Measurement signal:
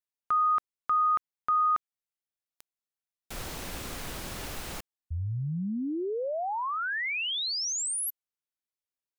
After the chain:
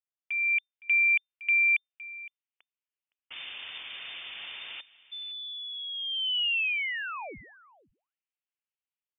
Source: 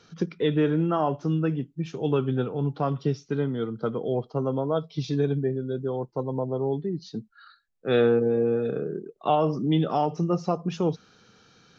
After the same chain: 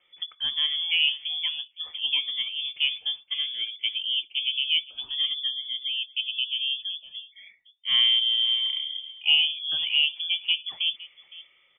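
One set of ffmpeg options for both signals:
ffmpeg -i in.wav -filter_complex "[0:a]acrossover=split=140|520|1300[link_01][link_02][link_03][link_04];[link_03]dynaudnorm=framelen=320:gausssize=3:maxgain=14dB[link_05];[link_01][link_02][link_05][link_04]amix=inputs=4:normalize=0,asplit=2[link_06][link_07];[link_07]adelay=513.1,volume=-18dB,highshelf=frequency=4000:gain=-11.5[link_08];[link_06][link_08]amix=inputs=2:normalize=0,lowpass=frequency=3100:width_type=q:width=0.5098,lowpass=frequency=3100:width_type=q:width=0.6013,lowpass=frequency=3100:width_type=q:width=0.9,lowpass=frequency=3100:width_type=q:width=2.563,afreqshift=-3600,volume=-8dB" out.wav

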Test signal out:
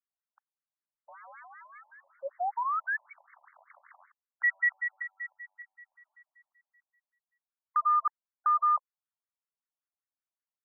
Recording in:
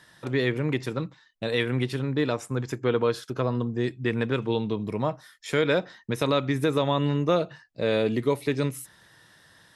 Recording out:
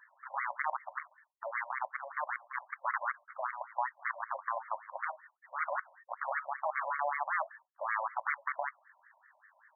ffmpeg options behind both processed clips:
ffmpeg -i in.wav -af "aeval=exprs='(mod(8.91*val(0)+1,2)-1)/8.91':channel_layout=same,acrusher=bits=2:mode=log:mix=0:aa=0.000001,afftfilt=real='re*between(b*sr/1024,730*pow(1600/730,0.5+0.5*sin(2*PI*5.2*pts/sr))/1.41,730*pow(1600/730,0.5+0.5*sin(2*PI*5.2*pts/sr))*1.41)':imag='im*between(b*sr/1024,730*pow(1600/730,0.5+0.5*sin(2*PI*5.2*pts/sr))/1.41,730*pow(1600/730,0.5+0.5*sin(2*PI*5.2*pts/sr))*1.41)':win_size=1024:overlap=0.75,volume=-1.5dB" out.wav

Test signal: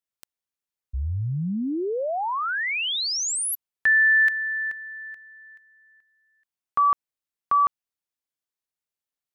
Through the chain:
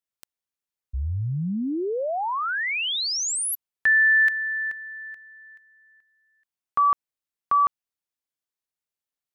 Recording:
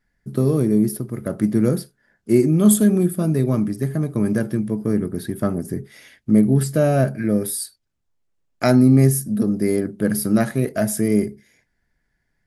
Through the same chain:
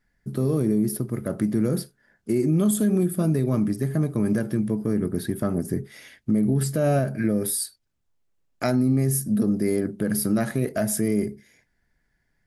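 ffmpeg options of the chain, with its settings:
ffmpeg -i in.wav -af "alimiter=limit=-13.5dB:level=0:latency=1:release=110" out.wav

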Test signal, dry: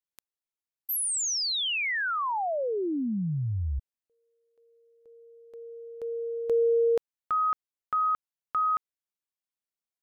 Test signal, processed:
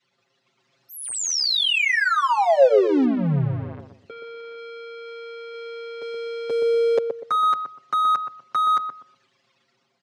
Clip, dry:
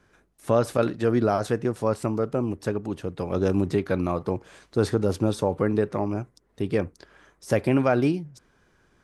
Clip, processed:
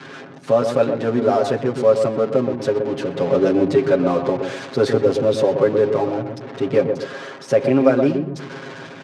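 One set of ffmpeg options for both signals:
ffmpeg -i in.wav -filter_complex "[0:a]aeval=exprs='val(0)+0.5*0.0316*sgn(val(0))':channel_layout=same,lowpass=5800,anlmdn=1.58,highpass=frequency=140:width=0.5412,highpass=frequency=140:width=1.3066,aecho=1:1:7.4:0.97,adynamicequalizer=threshold=0.0178:dfrequency=530:dqfactor=2.5:tfrequency=530:tqfactor=2.5:attack=5:release=100:ratio=0.438:range=3.5:mode=boostabove:tftype=bell,dynaudnorm=framelen=150:gausssize=7:maxgain=5dB,asplit=2[link_01][link_02];[link_02]adelay=123,lowpass=frequency=820:poles=1,volume=-4.5dB,asplit=2[link_03][link_04];[link_04]adelay=123,lowpass=frequency=820:poles=1,volume=0.35,asplit=2[link_05][link_06];[link_06]adelay=123,lowpass=frequency=820:poles=1,volume=0.35,asplit=2[link_07][link_08];[link_08]adelay=123,lowpass=frequency=820:poles=1,volume=0.35[link_09];[link_03][link_05][link_07][link_09]amix=inputs=4:normalize=0[link_10];[link_01][link_10]amix=inputs=2:normalize=0,volume=-2.5dB" out.wav

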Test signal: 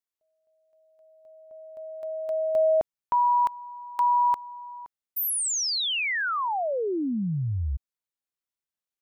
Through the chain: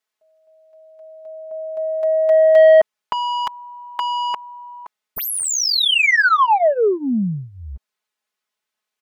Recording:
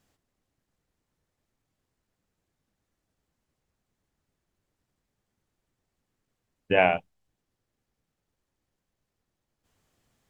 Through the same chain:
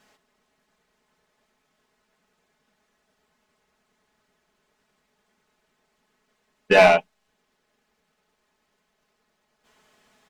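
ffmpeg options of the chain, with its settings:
ffmpeg -i in.wav -filter_complex "[0:a]asplit=2[link_01][link_02];[link_02]highpass=frequency=720:poles=1,volume=20dB,asoftclip=type=tanh:threshold=-7dB[link_03];[link_01][link_03]amix=inputs=2:normalize=0,lowpass=frequency=2900:poles=1,volume=-6dB,aecho=1:1:4.7:0.82" out.wav

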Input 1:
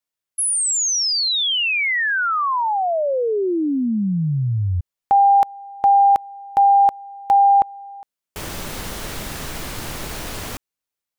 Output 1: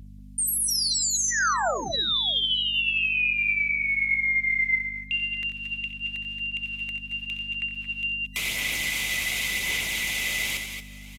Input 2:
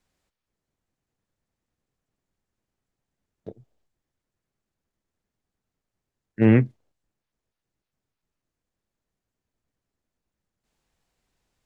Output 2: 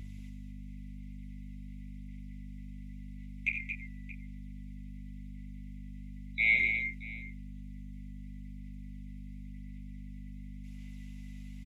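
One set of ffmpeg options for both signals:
ffmpeg -i in.wav -filter_complex "[0:a]afftfilt=real='real(if(lt(b,920),b+92*(1-2*mod(floor(b/92),2)),b),0)':imag='imag(if(lt(b,920),b+92*(1-2*mod(floor(b/92),2)),b),0)':win_size=2048:overlap=0.75,highshelf=frequency=1900:width_type=q:width=1.5:gain=6.5,bandreject=frequency=50:width_type=h:width=6,bandreject=frequency=100:width_type=h:width=6,bandreject=frequency=150:width_type=h:width=6,bandreject=frequency=200:width_type=h:width=6,bandreject=frequency=250:width_type=h:width=6,bandreject=frequency=300:width_type=h:width=6,bandreject=frequency=350:width_type=h:width=6,bandreject=frequency=400:width_type=h:width=6,areverse,acompressor=threshold=-19dB:ratio=20:attack=0.59:release=122:knee=1:detection=peak,areverse,alimiter=limit=-21.5dB:level=0:latency=1:release=303,acrossover=split=330|820[link_01][link_02][link_03];[link_01]acompressor=threshold=-47dB:ratio=8[link_04];[link_02]acompressor=threshold=-42dB:ratio=5[link_05];[link_03]acompressor=threshold=-30dB:ratio=5[link_06];[link_04][link_05][link_06]amix=inputs=3:normalize=0,aphaser=in_gain=1:out_gain=1:delay=1.6:decay=0.3:speed=0.92:type=sinusoidal,aeval=exprs='val(0)+0.00501*(sin(2*PI*50*n/s)+sin(2*PI*2*50*n/s)/2+sin(2*PI*3*50*n/s)/3+sin(2*PI*4*50*n/s)/4+sin(2*PI*5*50*n/s)/5)':channel_layout=same,aecho=1:1:65|89|224|233|626:0.282|0.299|0.355|0.266|0.126,aresample=32000,aresample=44100,volume=4dB" out.wav

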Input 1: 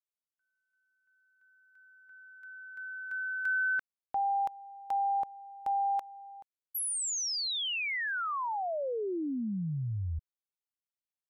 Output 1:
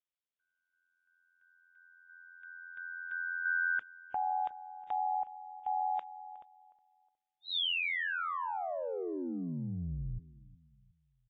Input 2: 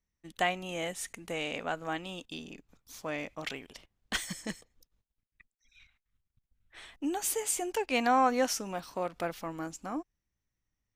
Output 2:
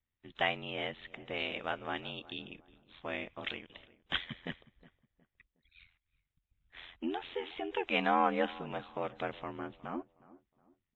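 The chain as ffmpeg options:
ffmpeg -i in.wav -filter_complex "[0:a]aeval=exprs='val(0)*sin(2*PI*43*n/s)':channel_layout=same,aemphasis=mode=production:type=75fm,asoftclip=type=tanh:threshold=-7.5dB,aresample=8000,aresample=44100,asplit=2[link_01][link_02];[link_02]adelay=364,lowpass=frequency=1400:poles=1,volume=-19dB,asplit=2[link_03][link_04];[link_04]adelay=364,lowpass=frequency=1400:poles=1,volume=0.37,asplit=2[link_05][link_06];[link_06]adelay=364,lowpass=frequency=1400:poles=1,volume=0.37[link_07];[link_03][link_05][link_07]amix=inputs=3:normalize=0[link_08];[link_01][link_08]amix=inputs=2:normalize=0" -ar 16000 -c:a wmav2 -b:a 32k out.wma

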